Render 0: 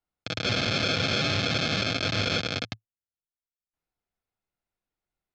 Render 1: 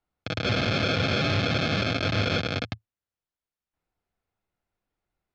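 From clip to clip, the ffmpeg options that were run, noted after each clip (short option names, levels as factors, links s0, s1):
-filter_complex "[0:a]lowpass=f=2300:p=1,equalizer=f=82:t=o:w=0.48:g=4,asplit=2[s0][s1];[s1]alimiter=level_in=1.06:limit=0.0631:level=0:latency=1,volume=0.944,volume=1.12[s2];[s0][s2]amix=inputs=2:normalize=0"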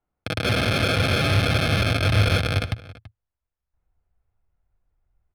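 -filter_complex "[0:a]adynamicsmooth=sensitivity=5.5:basefreq=2100,asubboost=boost=8.5:cutoff=86,asplit=2[s0][s1];[s1]adelay=332.4,volume=0.126,highshelf=f=4000:g=-7.48[s2];[s0][s2]amix=inputs=2:normalize=0,volume=1.5"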